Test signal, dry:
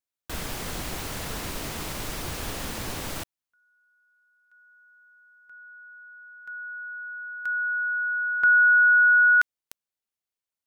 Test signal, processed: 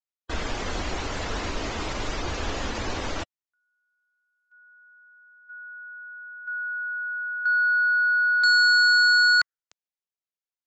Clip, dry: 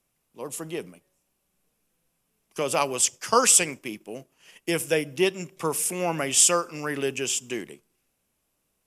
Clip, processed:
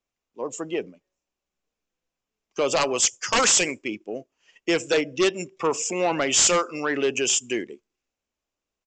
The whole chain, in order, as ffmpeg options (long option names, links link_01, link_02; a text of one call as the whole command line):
ffmpeg -i in.wav -af "afftdn=noise_reduction=15:noise_floor=-40,equalizer=frequency=150:width_type=o:width=0.8:gain=-10.5,aresample=16000,aeval=exprs='0.447*sin(PI/2*3.55*val(0)/0.447)':channel_layout=same,aresample=44100,adynamicequalizer=threshold=0.0398:dfrequency=5500:dqfactor=0.7:tfrequency=5500:tqfactor=0.7:attack=5:release=100:ratio=0.3:range=1.5:mode=boostabove:tftype=highshelf,volume=-8.5dB" out.wav